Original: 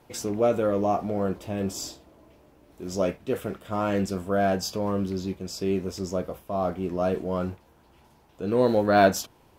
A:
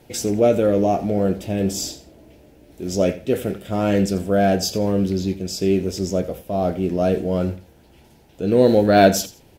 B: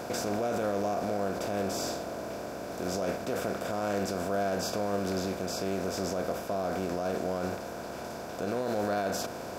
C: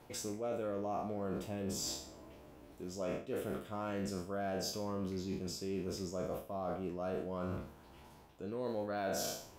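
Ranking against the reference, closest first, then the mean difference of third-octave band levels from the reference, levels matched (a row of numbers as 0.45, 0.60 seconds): A, C, B; 2.5, 5.5, 10.0 decibels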